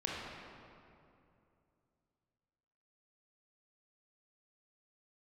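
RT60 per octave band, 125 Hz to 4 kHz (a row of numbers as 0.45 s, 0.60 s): 3.3 s, 3.0 s, 2.8 s, 2.5 s, 2.0 s, 1.5 s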